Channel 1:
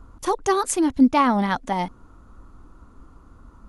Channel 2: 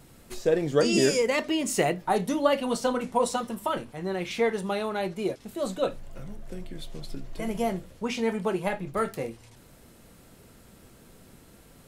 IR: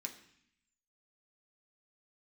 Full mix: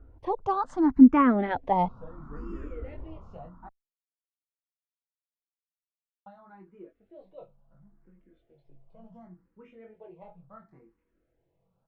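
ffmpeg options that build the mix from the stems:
-filter_complex "[0:a]dynaudnorm=f=120:g=11:m=15dB,volume=-4dB[a];[1:a]aecho=1:1:6.1:0.34,flanger=delay=20:depth=3.7:speed=0.17,adelay=1550,volume=-15.5dB,asplit=3[b][c][d];[b]atrim=end=3.69,asetpts=PTS-STARTPTS,afade=t=out:st=3.686:d=0.004:c=hsin[e];[c]atrim=start=3.69:end=6.26,asetpts=PTS-STARTPTS,volume=0[f];[d]atrim=start=6.26,asetpts=PTS-STARTPTS,afade=t=in:d=0.004:c=hsin[g];[e][f][g]concat=n=3:v=0:a=1[h];[a][h]amix=inputs=2:normalize=0,lowpass=1.4k,asplit=2[i][j];[j]afreqshift=0.71[k];[i][k]amix=inputs=2:normalize=1"

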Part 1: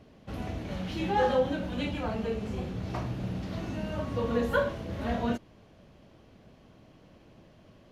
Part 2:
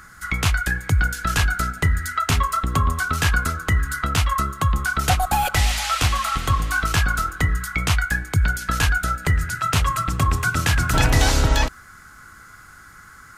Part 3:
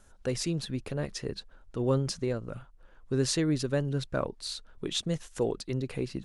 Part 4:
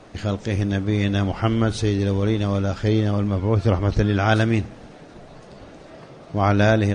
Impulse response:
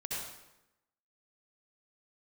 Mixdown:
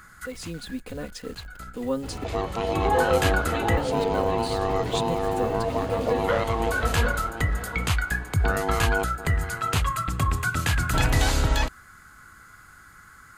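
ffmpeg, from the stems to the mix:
-filter_complex "[0:a]aecho=1:1:2.3:0.51,adelay=1750,volume=0dB,asplit=2[a][b];[b]volume=-8dB[c];[1:a]volume=-4.5dB[d];[2:a]aecho=1:1:4:0.93,dynaudnorm=f=130:g=7:m=8.5dB,acrusher=bits=7:dc=4:mix=0:aa=0.000001,volume=-11dB,asplit=3[e][f][g];[e]atrim=end=2.24,asetpts=PTS-STARTPTS,afade=t=out:st=2.236:d=0.004:c=hsin[h];[f]atrim=start=2.24:end=3.77,asetpts=PTS-STARTPTS,volume=0[i];[g]atrim=start=3.77,asetpts=PTS-STARTPTS,afade=t=in:d=0.004:c=hsin[j];[h][i][j]concat=n=3:v=0:a=1,asplit=2[k][l];[3:a]alimiter=limit=-14.5dB:level=0:latency=1:release=339,aeval=exprs='val(0)*sin(2*PI*570*n/s)':c=same,adelay=2100,volume=0dB,asplit=2[m][n];[n]volume=-12dB[o];[l]apad=whole_len=589913[p];[d][p]sidechaincompress=threshold=-51dB:ratio=8:attack=6.5:release=521[q];[c][o]amix=inputs=2:normalize=0,aecho=0:1:744:1[r];[a][q][k][m][r]amix=inputs=5:normalize=0,equalizer=f=5.6k:t=o:w=0.2:g=-6.5"

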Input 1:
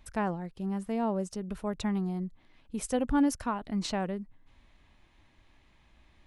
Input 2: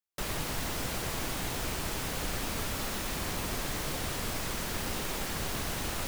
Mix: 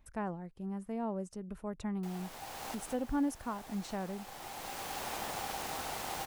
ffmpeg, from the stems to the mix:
-filter_complex "[0:a]equalizer=f=3.9k:t=o:w=1.4:g=-7.5,volume=-6.5dB,asplit=2[a][b];[1:a]aeval=exprs='val(0)*sin(2*PI*790*n/s)':c=same,adelay=1850,volume=-2.5dB[c];[b]apad=whole_len=349540[d];[c][d]sidechaincompress=threshold=-45dB:ratio=16:attack=16:release=985[e];[a][e]amix=inputs=2:normalize=0"

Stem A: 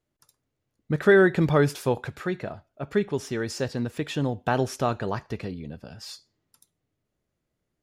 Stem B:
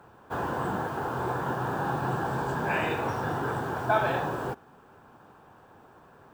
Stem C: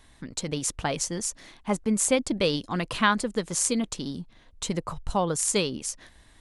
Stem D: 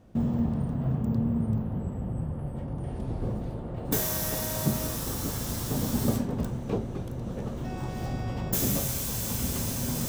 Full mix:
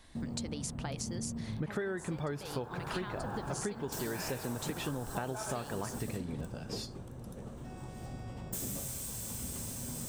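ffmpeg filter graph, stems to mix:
-filter_complex "[0:a]adelay=700,volume=-2dB[a];[1:a]adelay=1450,volume=-9.5dB[b];[2:a]acompressor=threshold=-33dB:ratio=6,equalizer=f=4.7k:w=3.7:g=5,volume=-3dB[c];[3:a]equalizer=f=8.4k:t=o:w=0.39:g=10,volume=-11.5dB[d];[a][b][c][d]amix=inputs=4:normalize=0,acompressor=threshold=-33dB:ratio=12"

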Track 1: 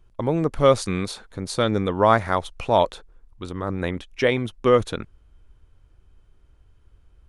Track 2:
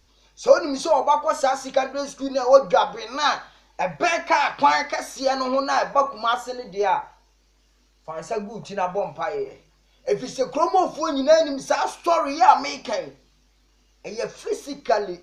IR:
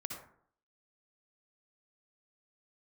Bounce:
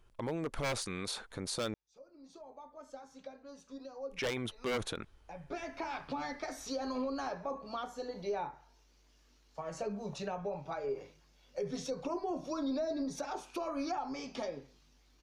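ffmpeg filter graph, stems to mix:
-filter_complex "[0:a]lowshelf=f=280:g=-9.5,aeval=exprs='0.141*(abs(mod(val(0)/0.141+3,4)-2)-1)':c=same,volume=-0.5dB,asplit=3[a][b][c];[a]atrim=end=1.74,asetpts=PTS-STARTPTS,afade=t=out:st=1.736:d=0.004:c=hsin[d];[b]atrim=start=1.74:end=4.1,asetpts=PTS-STARTPTS,volume=0[e];[c]atrim=start=4.1,asetpts=PTS-STARTPTS,afade=t=in:d=0.004:c=hsin[f];[d][e][f]concat=n=3:v=0:a=1,asplit=2[g][h];[1:a]acrossover=split=400[i][j];[j]acompressor=threshold=-35dB:ratio=4[k];[i][k]amix=inputs=2:normalize=0,adelay=1500,volume=-5.5dB,afade=t=in:st=4.29:d=0.3:silence=0.223872[l];[h]apad=whole_len=737712[m];[l][m]sidechaincompress=threshold=-40dB:ratio=16:attack=8.2:release=762[n];[g][n]amix=inputs=2:normalize=0,alimiter=level_in=4dB:limit=-24dB:level=0:latency=1:release=66,volume=-4dB"

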